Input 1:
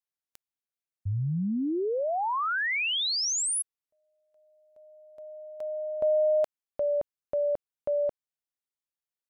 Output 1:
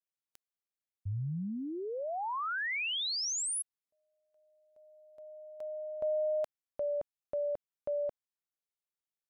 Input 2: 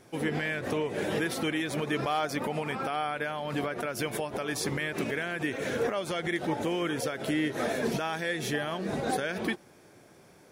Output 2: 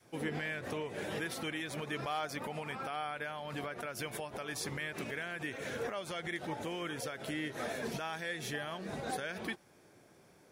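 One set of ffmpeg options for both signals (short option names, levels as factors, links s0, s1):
-af "adynamicequalizer=threshold=0.00708:dfrequency=310:dqfactor=0.72:tfrequency=310:tqfactor=0.72:attack=5:release=100:ratio=0.375:range=2.5:mode=cutabove:tftype=bell,volume=0.501"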